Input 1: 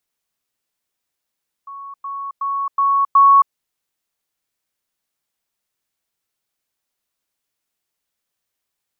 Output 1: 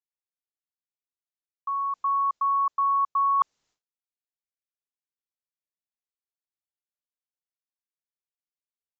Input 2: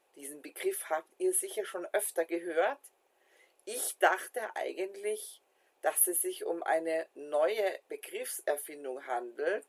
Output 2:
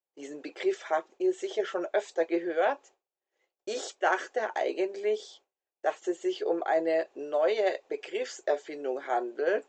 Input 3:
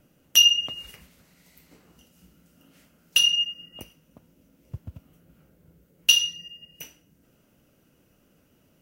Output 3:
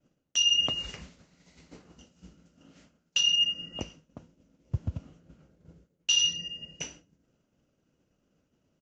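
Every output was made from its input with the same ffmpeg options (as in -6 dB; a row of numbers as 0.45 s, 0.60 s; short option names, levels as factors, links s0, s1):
-af "agate=range=0.0224:threshold=0.00282:ratio=3:detection=peak,equalizer=f=2300:w=0.86:g=-3.5,areverse,acompressor=threshold=0.0355:ratio=12,areverse,aresample=16000,aresample=44100,volume=2.37"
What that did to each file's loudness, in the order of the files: -9.5 LU, +2.5 LU, -6.5 LU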